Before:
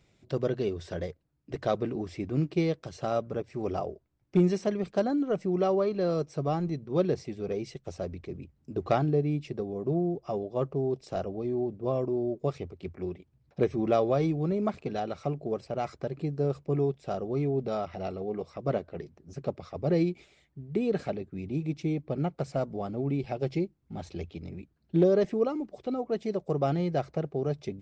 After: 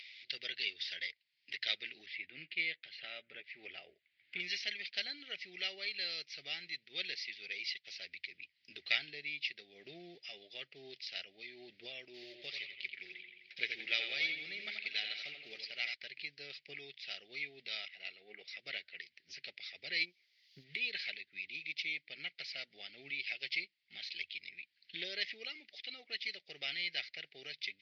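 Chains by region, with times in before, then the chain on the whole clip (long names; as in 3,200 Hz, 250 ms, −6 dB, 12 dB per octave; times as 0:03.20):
0:02.06–0:04.40: high-frequency loss of the air 370 metres + double-tracking delay 12 ms −11.5 dB
0:12.14–0:15.94: one scale factor per block 7 bits + notch filter 680 Hz, Q 16 + bucket-brigade delay 85 ms, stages 2,048, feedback 47%, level −6 dB
0:17.88–0:18.48: low-pass filter 1,800 Hz 6 dB per octave + low-shelf EQ 170 Hz −6.5 dB + multiband upward and downward expander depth 70%
0:20.04–0:20.63: low-pass filter 1,300 Hz 24 dB per octave + transient designer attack +10 dB, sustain −9 dB + background noise violet −71 dBFS
whole clip: elliptic band-pass filter 2,000–4,800 Hz, stop band 40 dB; upward compression, threshold −57 dBFS; level +13 dB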